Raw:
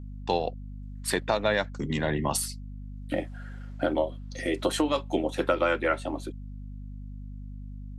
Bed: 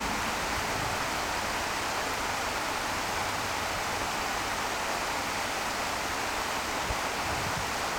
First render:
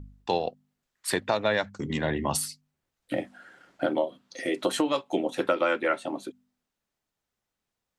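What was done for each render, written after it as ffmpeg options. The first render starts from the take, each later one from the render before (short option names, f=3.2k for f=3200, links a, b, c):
-af "bandreject=f=50:t=h:w=4,bandreject=f=100:t=h:w=4,bandreject=f=150:t=h:w=4,bandreject=f=200:t=h:w=4,bandreject=f=250:t=h:w=4"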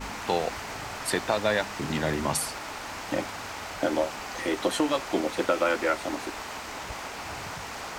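-filter_complex "[1:a]volume=-6dB[a];[0:a][a]amix=inputs=2:normalize=0"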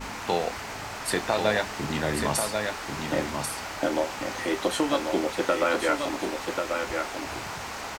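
-filter_complex "[0:a]asplit=2[a][b];[b]adelay=28,volume=-11.5dB[c];[a][c]amix=inputs=2:normalize=0,aecho=1:1:1089:0.562"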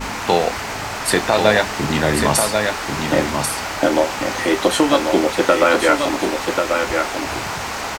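-af "volume=10dB,alimiter=limit=-1dB:level=0:latency=1"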